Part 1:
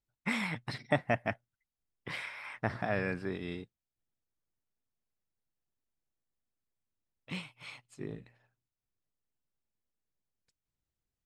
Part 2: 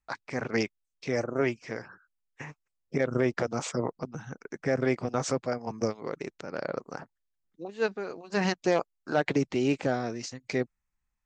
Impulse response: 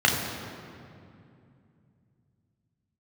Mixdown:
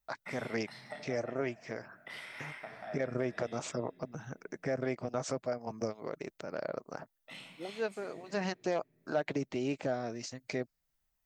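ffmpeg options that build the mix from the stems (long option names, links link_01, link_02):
-filter_complex "[0:a]aemphasis=mode=production:type=50fm,acompressor=threshold=-43dB:ratio=6,highpass=frequency=680:poles=1,volume=-4.5dB,asplit=2[link_01][link_02];[link_02]volume=-11.5dB[link_03];[1:a]volume=-2.5dB[link_04];[2:a]atrim=start_sample=2205[link_05];[link_03][link_05]afir=irnorm=-1:irlink=0[link_06];[link_01][link_04][link_06]amix=inputs=3:normalize=0,equalizer=frequency=630:width=5.9:gain=7.5,acompressor=threshold=-40dB:ratio=1.5"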